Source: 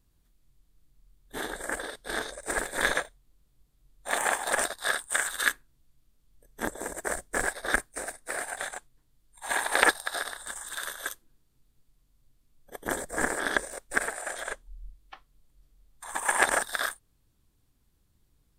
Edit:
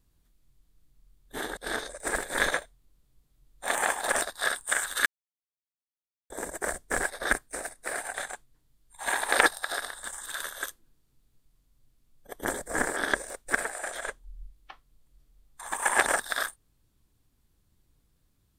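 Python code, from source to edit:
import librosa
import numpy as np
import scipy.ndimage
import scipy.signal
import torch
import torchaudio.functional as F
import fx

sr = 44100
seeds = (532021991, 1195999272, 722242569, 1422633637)

y = fx.edit(x, sr, fx.cut(start_s=1.57, length_s=0.43),
    fx.silence(start_s=5.49, length_s=1.24), tone=tone)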